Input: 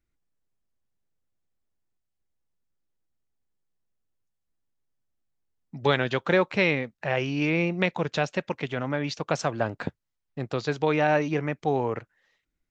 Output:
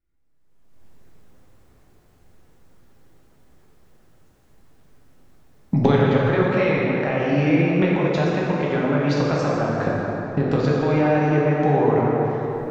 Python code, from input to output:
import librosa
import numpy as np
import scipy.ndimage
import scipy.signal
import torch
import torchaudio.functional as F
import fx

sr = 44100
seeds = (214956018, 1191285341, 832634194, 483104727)

y = fx.recorder_agc(x, sr, target_db=-11.5, rise_db_per_s=36.0, max_gain_db=30)
y = fx.high_shelf(y, sr, hz=2200.0, db=-9.0)
y = fx.rev_plate(y, sr, seeds[0], rt60_s=4.0, hf_ratio=0.5, predelay_ms=0, drr_db=-5.5)
y = y * 10.0 ** (-2.5 / 20.0)